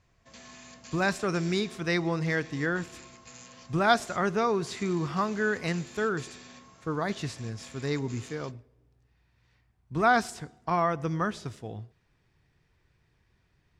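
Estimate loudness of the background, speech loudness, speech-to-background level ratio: -48.5 LUFS, -29.5 LUFS, 19.0 dB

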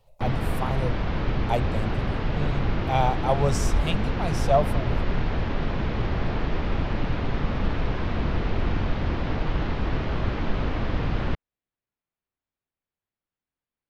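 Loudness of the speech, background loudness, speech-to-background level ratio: -28.5 LUFS, -28.5 LUFS, 0.0 dB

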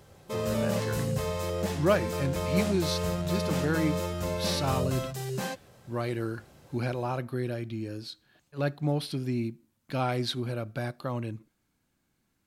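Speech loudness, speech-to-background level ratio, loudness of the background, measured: -32.5 LUFS, -1.0 dB, -31.5 LUFS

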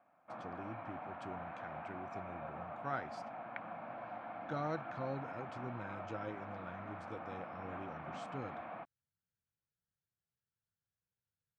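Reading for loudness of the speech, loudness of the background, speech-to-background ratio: -47.0 LUFS, -47.0 LUFS, 0.0 dB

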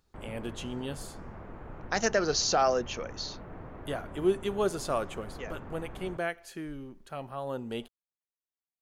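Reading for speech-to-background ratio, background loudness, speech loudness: 13.5 dB, -46.0 LUFS, -32.5 LUFS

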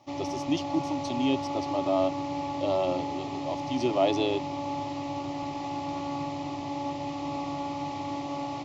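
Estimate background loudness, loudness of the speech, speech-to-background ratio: -33.5 LUFS, -30.0 LUFS, 3.5 dB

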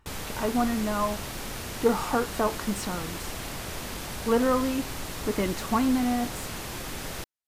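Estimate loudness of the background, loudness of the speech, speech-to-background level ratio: -35.5 LUFS, -28.0 LUFS, 7.5 dB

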